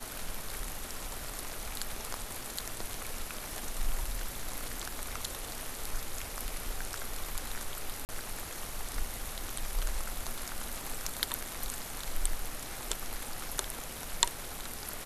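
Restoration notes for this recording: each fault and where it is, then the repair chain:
0:08.05–0:08.09: drop-out 39 ms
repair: repair the gap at 0:08.05, 39 ms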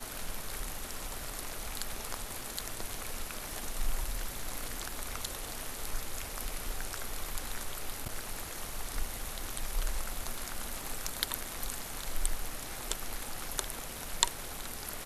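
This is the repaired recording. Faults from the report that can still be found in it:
none of them is left

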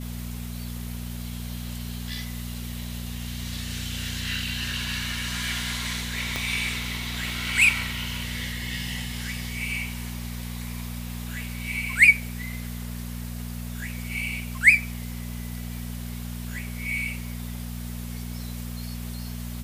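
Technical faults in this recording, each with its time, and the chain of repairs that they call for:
mains hum 60 Hz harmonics 4 −34 dBFS
0:06.36: click −12 dBFS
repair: click removal
hum removal 60 Hz, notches 4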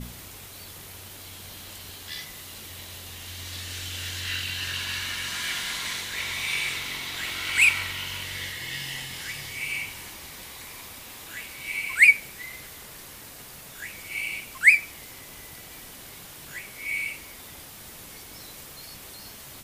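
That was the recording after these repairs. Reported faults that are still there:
0:06.36: click

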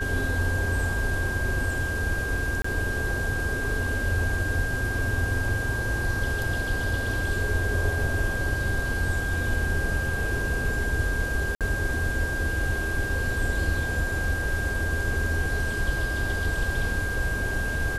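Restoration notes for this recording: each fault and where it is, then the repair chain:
whistle 1,600 Hz −29 dBFS
0:02.62–0:02.64: drop-out 24 ms
0:11.55–0:11.61: drop-out 57 ms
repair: notch filter 1,600 Hz, Q 30
repair the gap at 0:02.62, 24 ms
repair the gap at 0:11.55, 57 ms

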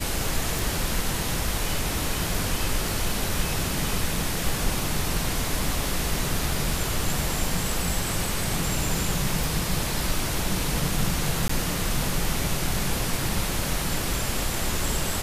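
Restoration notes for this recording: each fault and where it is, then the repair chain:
0:00.59: click
0:09.44: click
0:11.48–0:11.49: drop-out 14 ms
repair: click removal
repair the gap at 0:11.48, 14 ms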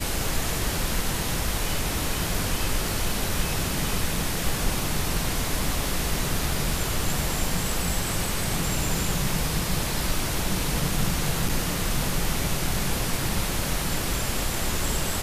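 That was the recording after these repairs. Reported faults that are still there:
none of them is left

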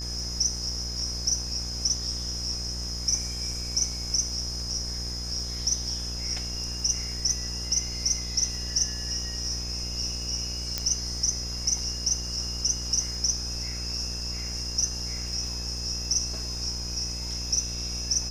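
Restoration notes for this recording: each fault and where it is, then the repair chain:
mains buzz 60 Hz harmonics 31 −36 dBFS
surface crackle 33 per second −39 dBFS
whistle 5,100 Hz −35 dBFS
0:10.78: click −11 dBFS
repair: click removal
hum removal 60 Hz, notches 31
notch filter 5,100 Hz, Q 30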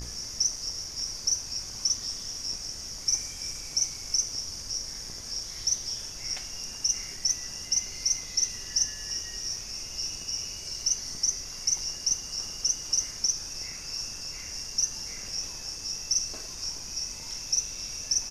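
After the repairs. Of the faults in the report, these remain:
none of them is left

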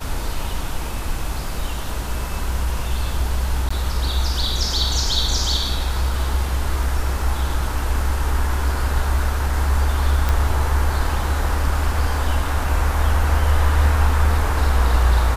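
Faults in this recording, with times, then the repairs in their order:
0:03.69–0:03.71: drop-out 15 ms
0:10.29: click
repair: click removal
repair the gap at 0:03.69, 15 ms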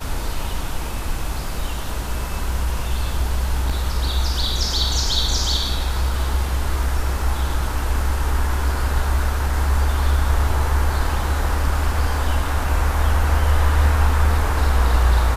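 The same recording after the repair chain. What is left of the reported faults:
none of them is left

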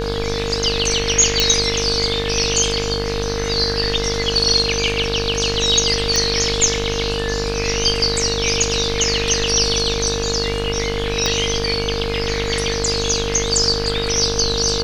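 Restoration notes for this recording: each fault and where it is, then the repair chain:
mains buzz 50 Hz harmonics 34 −25 dBFS
whistle 460 Hz −23 dBFS
0:01.40: click
0:06.16: click
0:11.26: click −4 dBFS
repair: click removal
hum removal 50 Hz, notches 34
notch filter 460 Hz, Q 30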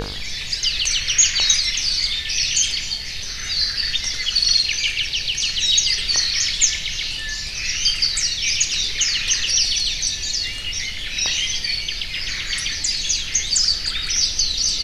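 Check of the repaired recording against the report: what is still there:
0:11.26: click

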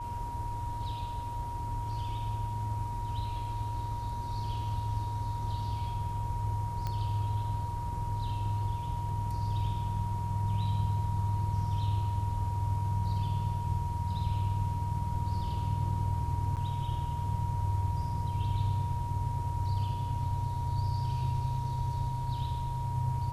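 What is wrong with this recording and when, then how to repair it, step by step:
whistle 950 Hz −37 dBFS
0:06.87: click −22 dBFS
0:16.56–0:16.57: drop-out 8.3 ms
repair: click removal
notch filter 950 Hz, Q 30
repair the gap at 0:16.56, 8.3 ms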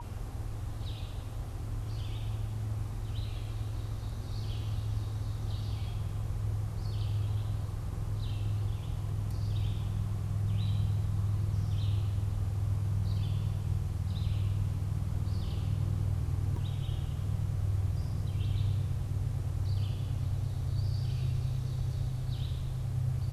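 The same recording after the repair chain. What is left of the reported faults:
none of them is left

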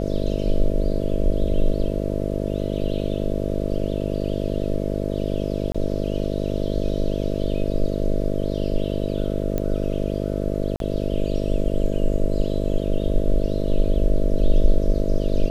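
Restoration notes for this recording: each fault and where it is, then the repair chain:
mains buzz 50 Hz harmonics 13 −25 dBFS
0:05.72–0:05.75: drop-out 25 ms
0:09.58: click −12 dBFS
0:10.76–0:10.80: drop-out 42 ms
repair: click removal
hum removal 50 Hz, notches 13
repair the gap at 0:05.72, 25 ms
repair the gap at 0:10.76, 42 ms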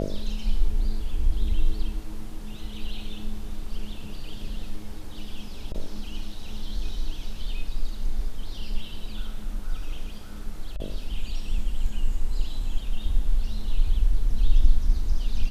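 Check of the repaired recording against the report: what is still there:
none of them is left

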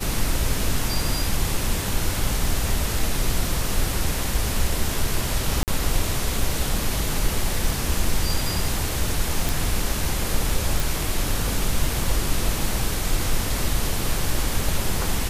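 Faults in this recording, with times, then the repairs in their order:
0:05.63–0:05.68: drop-out 48 ms
0:09.49: click
0:10.80: click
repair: click removal
repair the gap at 0:05.63, 48 ms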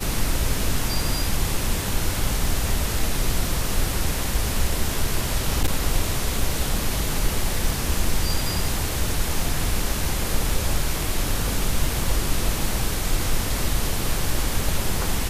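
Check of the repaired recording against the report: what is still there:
none of them is left

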